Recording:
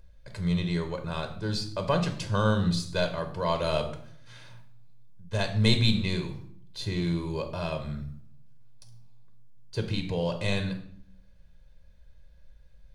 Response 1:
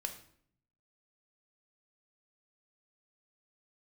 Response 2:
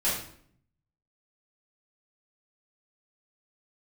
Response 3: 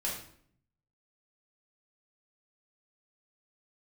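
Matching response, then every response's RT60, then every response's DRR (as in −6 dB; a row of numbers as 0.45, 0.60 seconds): 1; 0.60, 0.60, 0.60 seconds; 5.0, −10.0, −4.5 decibels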